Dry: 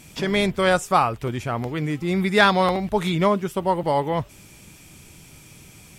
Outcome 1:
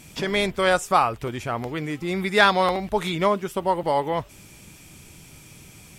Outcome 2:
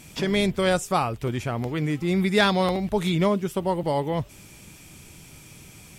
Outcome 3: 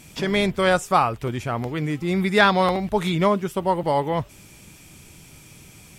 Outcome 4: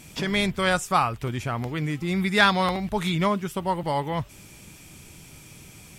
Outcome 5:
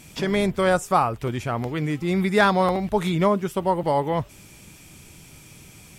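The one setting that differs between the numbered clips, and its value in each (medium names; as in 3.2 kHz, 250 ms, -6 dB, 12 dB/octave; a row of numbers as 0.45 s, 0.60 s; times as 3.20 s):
dynamic bell, frequency: 140 Hz, 1.2 kHz, 9.4 kHz, 470 Hz, 3.2 kHz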